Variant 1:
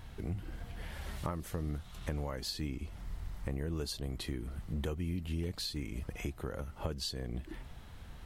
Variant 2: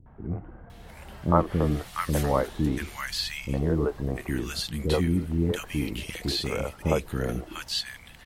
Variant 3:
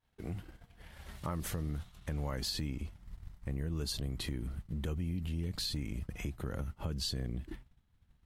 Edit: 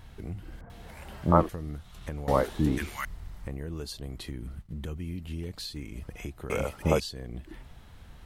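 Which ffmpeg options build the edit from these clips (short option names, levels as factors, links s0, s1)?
-filter_complex "[1:a]asplit=3[s0][s1][s2];[0:a]asplit=5[s3][s4][s5][s6][s7];[s3]atrim=end=0.612[s8];[s0]atrim=start=0.608:end=1.492[s9];[s4]atrim=start=1.488:end=2.282[s10];[s1]atrim=start=2.278:end=3.052[s11];[s5]atrim=start=3.048:end=4.312[s12];[2:a]atrim=start=4.308:end=4.972[s13];[s6]atrim=start=4.968:end=6.502[s14];[s2]atrim=start=6.498:end=7.002[s15];[s7]atrim=start=6.998[s16];[s8][s9]acrossfade=d=0.004:c1=hsin:c2=hsin[s17];[s17][s10]acrossfade=d=0.004:c1=hsin:c2=hsin[s18];[s18][s11]acrossfade=d=0.004:c1=hsin:c2=hsin[s19];[s19][s12]acrossfade=d=0.004:c1=hsin:c2=hsin[s20];[s20][s13]acrossfade=d=0.004:c1=hsin:c2=hsin[s21];[s21][s14]acrossfade=d=0.004:c1=hsin:c2=hsin[s22];[s22][s15]acrossfade=d=0.004:c1=hsin:c2=hsin[s23];[s23][s16]acrossfade=d=0.004:c1=hsin:c2=hsin"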